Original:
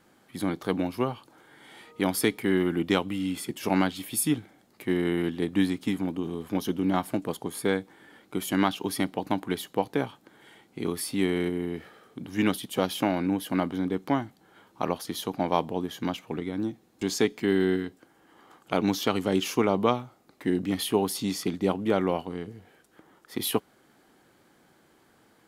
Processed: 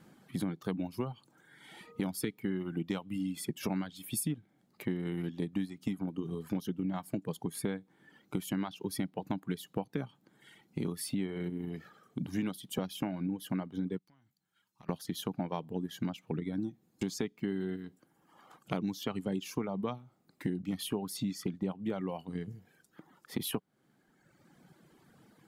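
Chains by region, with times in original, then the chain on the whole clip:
13.98–14.89 s: amplifier tone stack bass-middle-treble 5-5-5 + compression 5:1, threshold -50 dBFS + valve stage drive 44 dB, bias 0.55
whole clip: reverb removal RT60 1.3 s; peaking EQ 160 Hz +12 dB 1.2 oct; compression 6:1, threshold -30 dBFS; trim -1.5 dB

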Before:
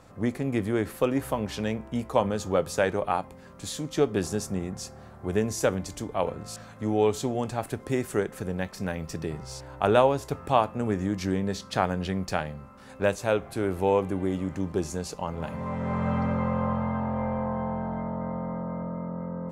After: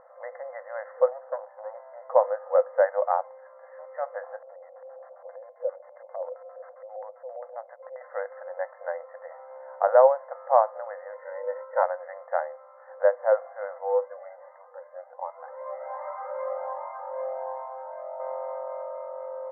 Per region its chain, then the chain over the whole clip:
1.08–1.75 s: low-pass 1 kHz + valve stage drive 24 dB, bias 0.7
4.36–8.01 s: compression 2.5:1, threshold -37 dBFS + LFO low-pass square 7.5 Hz 470–7200 Hz
11.12–11.83 s: distance through air 380 m + comb 2.1 ms, depth 98% + decay stretcher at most 130 dB/s
13.78–18.20 s: Gaussian low-pass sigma 1.9 samples + Shepard-style flanger rising 1.3 Hz
whole clip: FFT band-pass 490–2100 Hz; tilt shelf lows +9.5 dB, about 1.1 kHz

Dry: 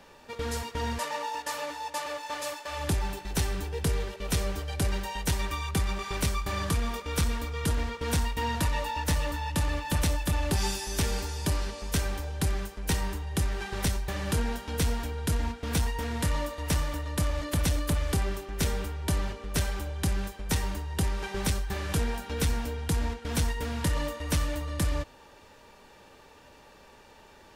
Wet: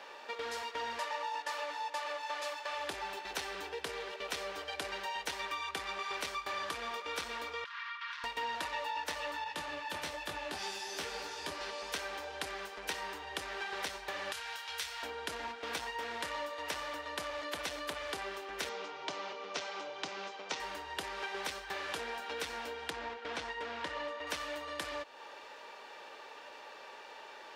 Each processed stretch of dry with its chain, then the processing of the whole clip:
7.64–8.24 s: Chebyshev high-pass 1 kHz, order 8 + compression 4:1, threshold -38 dBFS + distance through air 240 m
9.44–11.61 s: peaking EQ 130 Hz +7 dB 1.4 oct + detune thickener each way 38 cents
14.32–15.03 s: high-pass 60 Hz + amplifier tone stack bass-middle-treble 10-0-10 + doubling 28 ms -6.5 dB
18.69–20.60 s: elliptic band-pass 120–6400 Hz + peaking EQ 1.7 kHz -8 dB 0.26 oct
22.90–24.27 s: low-pass 7.9 kHz + treble shelf 5 kHz -9.5 dB
whole clip: three-band isolator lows -20 dB, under 320 Hz, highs -14 dB, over 5.2 kHz; compression 2.5:1, threshold -45 dBFS; bass shelf 290 Hz -12 dB; trim +6.5 dB

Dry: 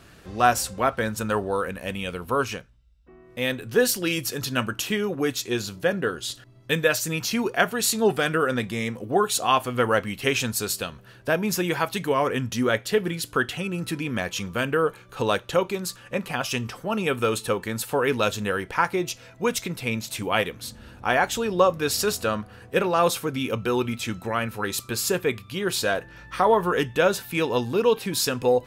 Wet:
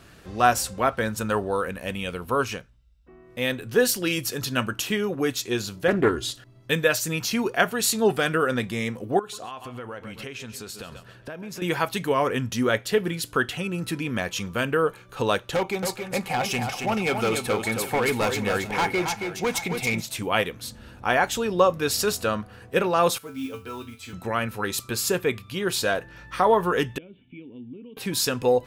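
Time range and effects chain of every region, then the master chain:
5.88–6.30 s: bass shelf 460 Hz +10 dB + comb 2.9 ms, depth 53% + loudspeaker Doppler distortion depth 0.22 ms
9.19–11.62 s: treble shelf 8.3 kHz -9.5 dB + feedback delay 134 ms, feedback 30%, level -16 dB + compression 8:1, threshold -33 dBFS
15.55–20.02 s: small resonant body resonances 790/2200 Hz, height 15 dB + overload inside the chain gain 19.5 dB + multi-tap echo 275/429/762 ms -6/-20/-14.5 dB
23.18–24.13 s: feedback comb 89 Hz, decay 0.27 s, harmonics odd, mix 90% + modulation noise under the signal 22 dB
26.98–27.97 s: compression 2:1, threshold -33 dBFS + cascade formant filter i + distance through air 140 m
whole clip: none

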